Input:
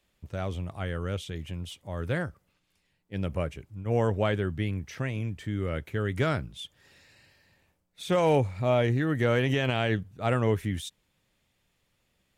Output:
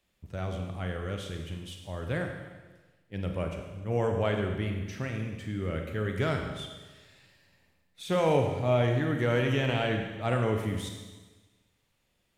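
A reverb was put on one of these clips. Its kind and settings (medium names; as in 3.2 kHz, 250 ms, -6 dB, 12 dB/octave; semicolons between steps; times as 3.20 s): Schroeder reverb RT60 1.3 s, combs from 33 ms, DRR 3 dB; trim -3 dB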